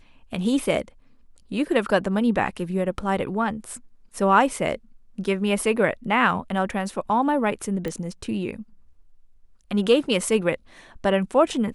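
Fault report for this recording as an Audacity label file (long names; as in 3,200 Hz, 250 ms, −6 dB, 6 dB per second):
7.880000	7.880000	click −18 dBFS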